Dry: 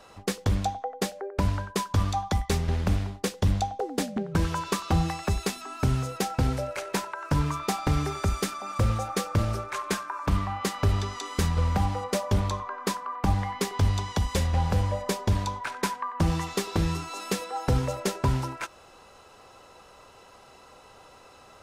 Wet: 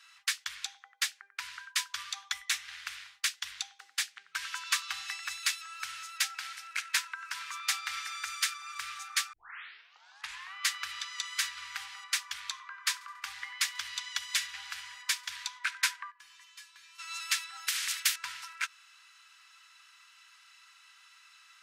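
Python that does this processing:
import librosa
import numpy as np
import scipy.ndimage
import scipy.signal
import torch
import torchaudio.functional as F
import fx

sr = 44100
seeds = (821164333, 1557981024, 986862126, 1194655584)

y = fx.notch(x, sr, hz=4700.0, q=11.0, at=(2.24, 2.65))
y = fx.highpass(y, sr, hz=120.0, slope=24, at=(6.1, 7.68))
y = fx.echo_feedback(y, sr, ms=70, feedback_pct=58, wet_db=-19.0, at=(12.91, 15.45), fade=0.02)
y = fx.comb_fb(y, sr, f0_hz=340.0, decay_s=0.24, harmonics='odd', damping=0.0, mix_pct=90, at=(16.1, 16.98), fade=0.02)
y = fx.spectral_comp(y, sr, ratio=4.0, at=(17.67, 18.16))
y = fx.edit(y, sr, fx.tape_start(start_s=9.33, length_s=1.21), tone=tone)
y = scipy.signal.sosfilt(scipy.signal.cheby2(4, 50, 610.0, 'highpass', fs=sr, output='sos'), y)
y = fx.high_shelf(y, sr, hz=7600.0, db=-7.0)
y = fx.upward_expand(y, sr, threshold_db=-45.0, expansion=1.5)
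y = F.gain(torch.from_numpy(y), 8.0).numpy()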